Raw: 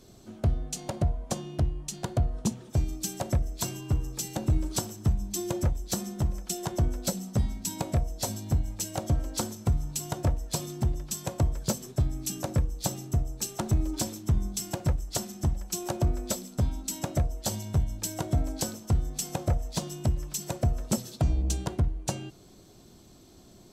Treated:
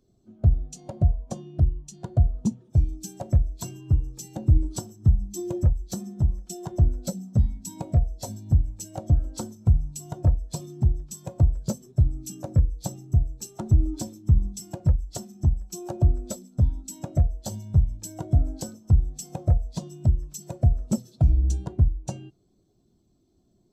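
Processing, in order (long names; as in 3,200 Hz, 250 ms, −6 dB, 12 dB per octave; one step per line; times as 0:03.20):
every bin expanded away from the loudest bin 1.5 to 1
level +6.5 dB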